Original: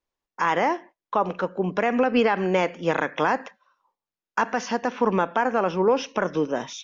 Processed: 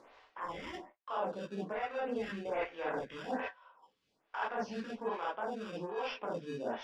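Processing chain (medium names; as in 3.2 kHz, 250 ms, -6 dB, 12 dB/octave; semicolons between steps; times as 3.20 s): Doppler pass-by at 2.43 s, 18 m/s, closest 18 m; high-pass 110 Hz 24 dB/octave; reverberation, pre-delay 13 ms, DRR -6.5 dB; in parallel at -7.5 dB: sample-and-hold 21×; on the sum: bass shelf 390 Hz -11.5 dB; upward compressor, threshold -32 dBFS; low-pass 3.7 kHz 12 dB/octave; reverse; compression 12:1, threshold -33 dBFS, peak gain reduction 23 dB; reverse; bass shelf 150 Hz +10 dB; lamp-driven phase shifter 1.2 Hz; trim +1 dB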